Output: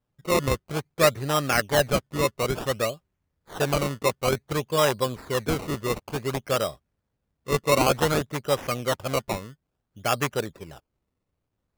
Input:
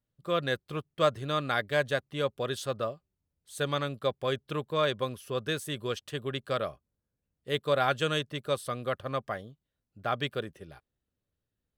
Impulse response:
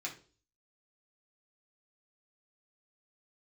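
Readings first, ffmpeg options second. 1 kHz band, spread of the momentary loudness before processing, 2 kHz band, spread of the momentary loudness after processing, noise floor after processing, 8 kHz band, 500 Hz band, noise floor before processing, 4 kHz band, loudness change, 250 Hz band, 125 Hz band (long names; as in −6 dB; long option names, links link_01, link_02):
+6.0 dB, 10 LU, +5.0 dB, 10 LU, −80 dBFS, +14.5 dB, +5.5 dB, below −85 dBFS, +4.0 dB, +6.0 dB, +7.5 dB, +6.5 dB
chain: -af "acrusher=samples=19:mix=1:aa=0.000001:lfo=1:lforange=19:lforate=0.56,volume=6dB"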